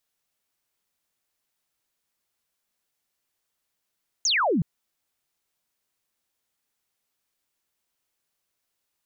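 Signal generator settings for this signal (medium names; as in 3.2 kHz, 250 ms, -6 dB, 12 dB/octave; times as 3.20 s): laser zap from 6.9 kHz, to 140 Hz, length 0.37 s sine, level -19.5 dB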